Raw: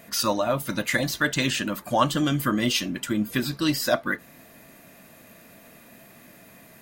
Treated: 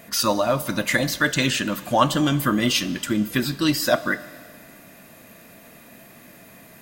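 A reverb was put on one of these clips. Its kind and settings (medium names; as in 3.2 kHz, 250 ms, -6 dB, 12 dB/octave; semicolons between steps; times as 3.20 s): Schroeder reverb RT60 2 s, combs from 31 ms, DRR 16 dB; trim +3 dB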